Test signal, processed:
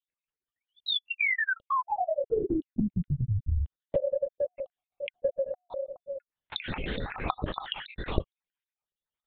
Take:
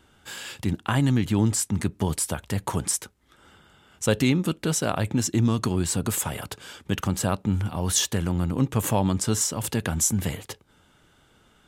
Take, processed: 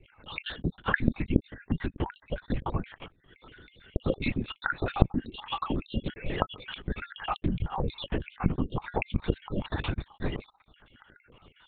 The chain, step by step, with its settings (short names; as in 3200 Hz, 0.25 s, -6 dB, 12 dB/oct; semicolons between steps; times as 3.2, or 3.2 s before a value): random spectral dropouts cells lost 61%; compressor 12:1, threshold -30 dBFS; LPC vocoder at 8 kHz whisper; gain +5.5 dB